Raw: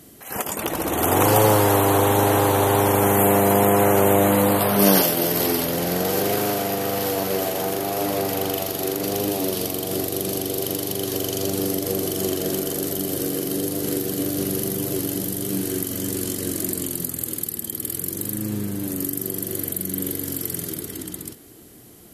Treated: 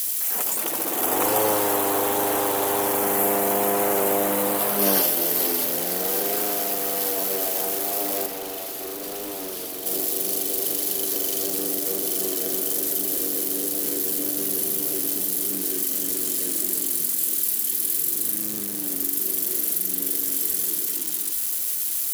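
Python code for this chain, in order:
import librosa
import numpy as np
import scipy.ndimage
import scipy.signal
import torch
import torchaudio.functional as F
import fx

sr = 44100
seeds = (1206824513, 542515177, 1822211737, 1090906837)

y = x + 0.5 * 10.0 ** (-15.5 / 20.0) * np.diff(np.sign(x), prepend=np.sign(x[:1]))
y = scipy.signal.sosfilt(scipy.signal.butter(2, 260.0, 'highpass', fs=sr, output='sos'), y)
y = fx.clip_hard(y, sr, threshold_db=-24.0, at=(8.26, 9.86))
y = y * librosa.db_to_amplitude(-5.0)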